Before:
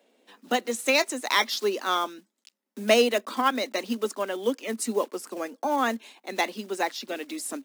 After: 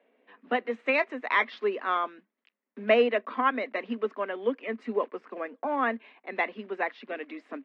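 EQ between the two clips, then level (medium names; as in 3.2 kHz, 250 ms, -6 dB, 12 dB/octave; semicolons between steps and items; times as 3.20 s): cabinet simulation 300–2200 Hz, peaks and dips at 340 Hz -8 dB, 560 Hz -5 dB, 840 Hz -8 dB, 1.4 kHz -5 dB; +3.0 dB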